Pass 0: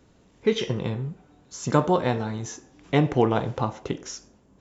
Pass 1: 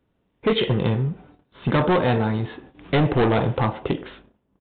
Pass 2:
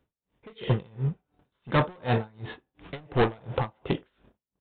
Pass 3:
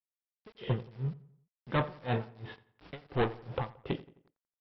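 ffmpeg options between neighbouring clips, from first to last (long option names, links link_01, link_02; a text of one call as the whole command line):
ffmpeg -i in.wav -af "aresample=8000,volume=22.5dB,asoftclip=hard,volume=-22.5dB,aresample=44100,agate=range=-19dB:threshold=-53dB:ratio=16:detection=peak,volume=7.5dB" out.wav
ffmpeg -i in.wav -af "equalizer=frequency=280:width_type=o:width=1.2:gain=-4,aeval=exprs='val(0)*pow(10,-32*(0.5-0.5*cos(2*PI*2.8*n/s))/20)':channel_layout=same" out.wav
ffmpeg -i in.wav -filter_complex "[0:a]aresample=11025,aeval=exprs='val(0)*gte(abs(val(0)),0.00422)':channel_layout=same,aresample=44100,asplit=2[link_01][link_02];[link_02]adelay=87,lowpass=frequency=2800:poles=1,volume=-18dB,asplit=2[link_03][link_04];[link_04]adelay=87,lowpass=frequency=2800:poles=1,volume=0.46,asplit=2[link_05][link_06];[link_06]adelay=87,lowpass=frequency=2800:poles=1,volume=0.46,asplit=2[link_07][link_08];[link_08]adelay=87,lowpass=frequency=2800:poles=1,volume=0.46[link_09];[link_01][link_03][link_05][link_07][link_09]amix=inputs=5:normalize=0,volume=-6.5dB" out.wav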